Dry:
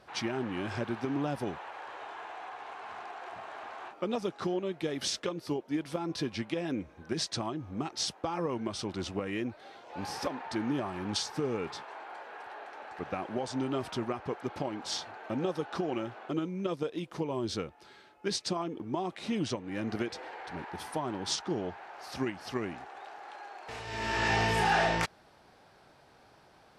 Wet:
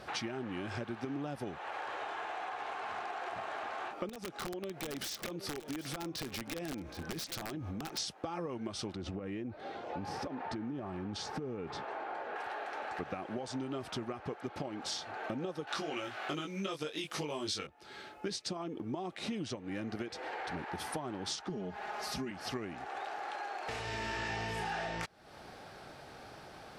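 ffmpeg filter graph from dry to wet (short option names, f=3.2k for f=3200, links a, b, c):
-filter_complex "[0:a]asettb=1/sr,asplit=3[a][b][c];[a]atrim=end=4.094[d];[b]atrim=start=4.09:end=7.98,asetpts=PTS-STARTPTS,afade=t=in:d=0.004:c=qsin,afade=t=out:st=3.886:d=0.004:c=qsin,acompressor=threshold=-42dB:ratio=4:attack=3.2:release=140:knee=1:detection=peak,aeval=exprs='(mod(63.1*val(0)+1,2)-1)/63.1':c=same,aecho=1:1:771:0.188,atrim=end_sample=171549[e];[c]atrim=start=7.976[f];[d][e]acrossfade=d=0.004:c1=hsin:c2=qsin[g];[g][f]acrossfade=d=0.004:c1=qsin:c2=hsin,asettb=1/sr,asplit=3[h][i][j];[h]atrim=end=8.954[k];[i]atrim=start=8.95:end=12.36,asetpts=PTS-STARTPTS,afade=t=in:d=0.004:c=qsin,afade=t=out:st=3.406:d=0.004:c=qsin,lowpass=f=3.5k:p=1,tiltshelf=f=710:g=4,acompressor=threshold=-36dB:ratio=4:attack=3.2:release=140:knee=1:detection=peak[l];[j]atrim=start=12.356[m];[k][l]acrossfade=d=0.004:c1=hsin:c2=qsin[n];[n][m]acrossfade=d=0.004:c1=qsin:c2=hsin,asettb=1/sr,asplit=3[o][p][q];[o]atrim=end=15.674[r];[p]atrim=start=15.67:end=17.67,asetpts=PTS-STARTPTS,afade=t=in:d=0.004:c=qsin,afade=t=out:st=1.996:d=0.004:c=qsin,tiltshelf=f=1.1k:g=-8,acontrast=68,asplit=2[s][t];[t]adelay=20,volume=-2.5dB[u];[s][u]amix=inputs=2:normalize=0,atrim=end_sample=88200[v];[q]atrim=start=17.666[w];[r][v]acrossfade=d=0.004:c1=hsin:c2=qsin[x];[x][w]acrossfade=d=0.004:c1=qsin:c2=hsin,asettb=1/sr,asplit=3[y][z][aa];[y]atrim=end=21.494[ab];[z]atrim=start=21.49:end=22.31,asetpts=PTS-STARTPTS,afade=t=in:d=0.004:c=qsin,afade=t=out:st=0.816:d=0.004:c=qsin,bass=f=250:g=8,treble=f=4k:g=3,aecho=1:1:4.8:0.85,atrim=end_sample=36162,acompressor=threshold=-37dB:ratio=2:attack=3.2:release=140:knee=1:detection=peak[ac];[aa]atrim=start=22.306[ad];[ab][ac]acrossfade=d=0.004:c1=hsin:c2=qsin[ae];[ae][ad]acrossfade=d=0.004:c1=qsin:c2=hsin,bandreject=f=980:w=12,acompressor=threshold=-46dB:ratio=6,volume=9dB"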